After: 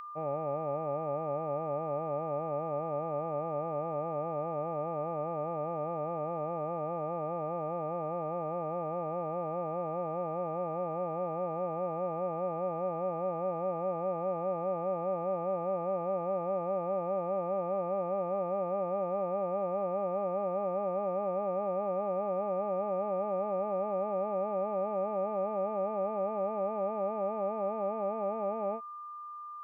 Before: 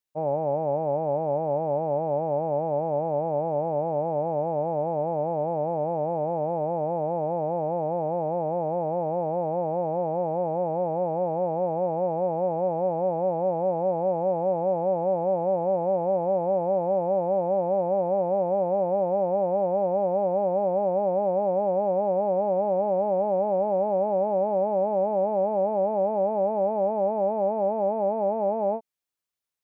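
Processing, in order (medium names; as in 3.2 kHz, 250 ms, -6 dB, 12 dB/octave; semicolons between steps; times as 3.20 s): whistle 1.2 kHz -33 dBFS; resonant high shelf 1.5 kHz +9.5 dB, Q 1.5; trim -7.5 dB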